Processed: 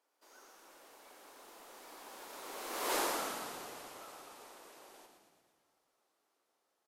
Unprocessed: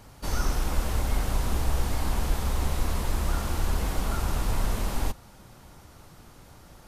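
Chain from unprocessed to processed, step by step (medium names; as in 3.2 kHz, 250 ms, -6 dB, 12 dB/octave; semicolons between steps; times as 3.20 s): Doppler pass-by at 2.96 s, 17 m/s, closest 1.5 m; inverse Chebyshev high-pass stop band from 170 Hz, stop band 40 dB; frequency-shifting echo 116 ms, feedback 61%, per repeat -34 Hz, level -6 dB; trim +4 dB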